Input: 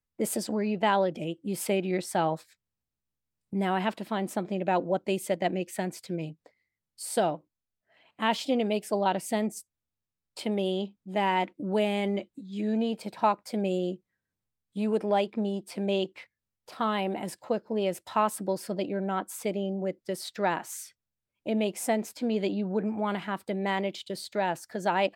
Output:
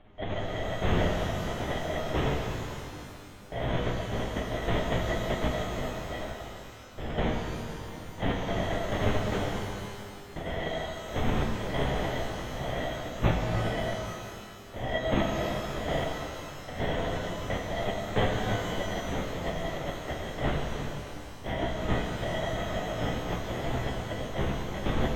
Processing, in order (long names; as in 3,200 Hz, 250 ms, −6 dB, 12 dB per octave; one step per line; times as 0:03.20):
frequency inversion band by band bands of 1,000 Hz
upward compression, threshold −28 dBFS
parametric band 780 Hz −6.5 dB 1.1 octaves
decimation without filtering 34×
linear-prediction vocoder at 8 kHz whisper
flanger 0.11 Hz, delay 9.5 ms, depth 8.4 ms, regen +42%
reverb with rising layers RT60 2.5 s, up +12 semitones, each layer −8 dB, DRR 0.5 dB
level +3.5 dB